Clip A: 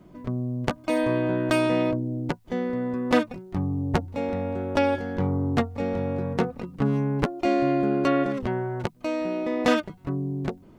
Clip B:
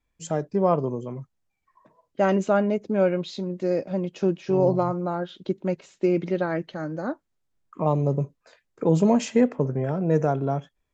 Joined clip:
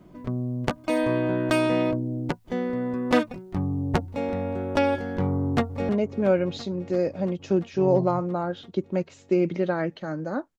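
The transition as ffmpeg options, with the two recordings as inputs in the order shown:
-filter_complex "[0:a]apad=whole_dur=10.58,atrim=end=10.58,atrim=end=5.892[s0];[1:a]atrim=start=2.608:end=7.3[s1];[s0][s1]acrossfade=d=0.004:c1=hsin:c2=hsin,asplit=2[s2][s3];[s3]afade=t=in:st=5.35:d=0.01,afade=t=out:st=5.89:d=0.01,aecho=0:1:340|680|1020|1360|1700|2040|2380|2720|3060|3400|3740|4080:0.177828|0.142262|0.11381|0.0910479|0.0728383|0.0582707|0.0466165|0.0372932|0.0298346|0.0238677|0.0190941|0.0152753[s4];[s2][s4]amix=inputs=2:normalize=0"

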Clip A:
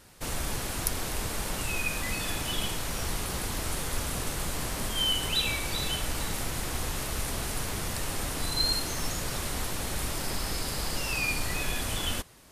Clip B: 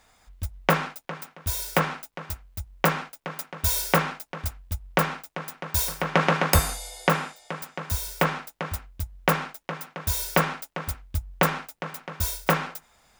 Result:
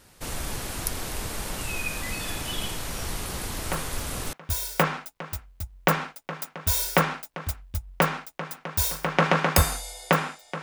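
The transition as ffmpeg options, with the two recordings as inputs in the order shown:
-filter_complex "[1:a]asplit=2[s0][s1];[0:a]apad=whole_dur=10.62,atrim=end=10.62,atrim=end=4.332[s2];[s1]atrim=start=1.298:end=7.59[s3];[s0]atrim=start=0.49:end=1.3,asetpts=PTS-STARTPTS,volume=0.282,afade=t=in:d=0.004:c=hsin,afade=t=out:st=0.806:d=0.004:c=hsin,adelay=3520[s4];[s2][s3]acrossfade=d=0.004:c1=hsin:c2=hsin[s5];[s5][s4]amix=inputs=2:normalize=0"

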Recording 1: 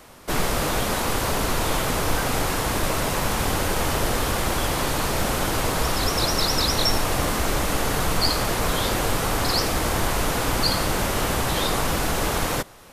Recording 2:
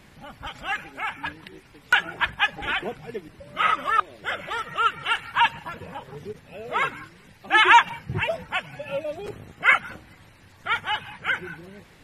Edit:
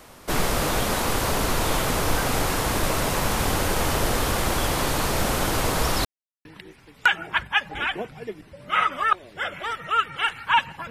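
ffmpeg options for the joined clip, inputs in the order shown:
-filter_complex "[0:a]apad=whole_dur=10.9,atrim=end=10.9,asplit=2[s0][s1];[s0]atrim=end=6.05,asetpts=PTS-STARTPTS,afade=t=out:st=6.046:d=0.004:c=hsin[s2];[s1]atrim=start=6.05:end=6.45,asetpts=PTS-STARTPTS,volume=0[s3];[1:a]atrim=start=1.32:end=5.77,asetpts=PTS-STARTPTS,afade=t=in:d=0.004:c=hsin[s4];[s2][s3][s4]concat=n=3:v=0:a=1"

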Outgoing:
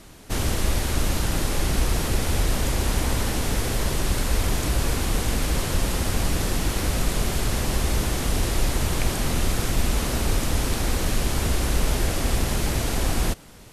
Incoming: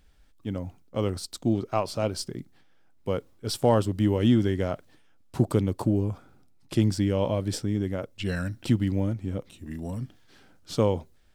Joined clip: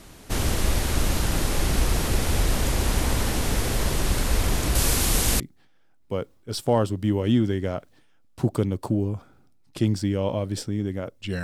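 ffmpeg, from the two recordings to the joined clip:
-filter_complex "[0:a]asettb=1/sr,asplit=3[s0][s1][s2];[s0]atrim=end=4.754[s3];[s1]atrim=start=4.75:end=5.4,asetpts=PTS-STARTPTS,afade=t=in:d=0.004:c=qsin,afade=t=out:st=0.646:d=0.004:c=qsin,highshelf=f=3700:g=10[s4];[s2]atrim=start=5.396[s5];[s3][s4]acrossfade=d=0.004:c1=hsin:c2=qsin[s6];[s6][s5]acrossfade=d=0.004:c1=qsin:c2=hsin,apad=whole_dur=11.43,atrim=end=11.43,atrim=end=5.402[s7];[1:a]atrim=start=2.358:end=8.39[s8];[s7][s8]acrossfade=d=0.004:c1=hsin:c2=hsin"

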